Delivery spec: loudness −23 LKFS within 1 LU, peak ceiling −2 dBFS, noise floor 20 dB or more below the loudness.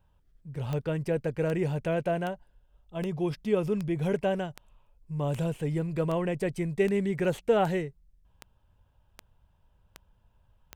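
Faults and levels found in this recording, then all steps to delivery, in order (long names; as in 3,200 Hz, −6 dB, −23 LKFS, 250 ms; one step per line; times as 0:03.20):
number of clicks 14; integrated loudness −29.5 LKFS; sample peak −13.5 dBFS; target loudness −23.0 LKFS
→ click removal
level +6.5 dB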